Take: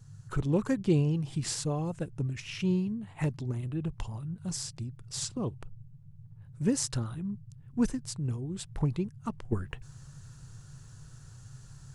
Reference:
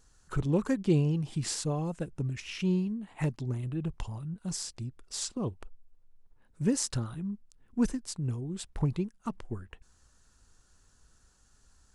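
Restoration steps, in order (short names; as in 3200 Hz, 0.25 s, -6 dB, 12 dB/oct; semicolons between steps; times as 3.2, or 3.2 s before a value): noise print and reduce 12 dB; gain correction -8 dB, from 9.52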